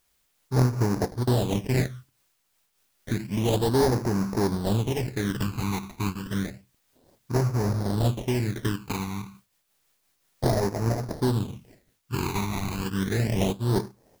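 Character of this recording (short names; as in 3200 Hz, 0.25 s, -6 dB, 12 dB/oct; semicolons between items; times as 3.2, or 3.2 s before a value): aliases and images of a low sample rate 1300 Hz, jitter 20%; phasing stages 12, 0.3 Hz, lowest notch 530–3200 Hz; a quantiser's noise floor 12-bit, dither triangular; noise-modulated level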